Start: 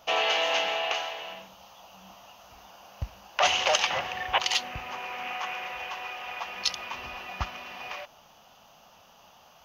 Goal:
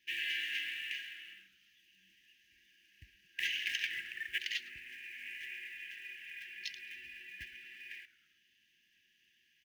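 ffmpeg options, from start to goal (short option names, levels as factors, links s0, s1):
-filter_complex "[0:a]acrossover=split=540 2400:gain=0.0708 1 0.126[s0][s1][s2];[s0][s1][s2]amix=inputs=3:normalize=0,asplit=2[s3][s4];[s4]acrusher=bits=3:mode=log:mix=0:aa=0.000001,volume=0.398[s5];[s3][s5]amix=inputs=2:normalize=0,afftfilt=real='re*(1-between(b*sr/4096,380,1600))':imag='im*(1-between(b*sr/4096,380,1600))':win_size=4096:overlap=0.75,asplit=4[s6][s7][s8][s9];[s7]adelay=108,afreqshift=-120,volume=0.106[s10];[s8]adelay=216,afreqshift=-240,volume=0.0422[s11];[s9]adelay=324,afreqshift=-360,volume=0.017[s12];[s6][s10][s11][s12]amix=inputs=4:normalize=0,volume=0.531"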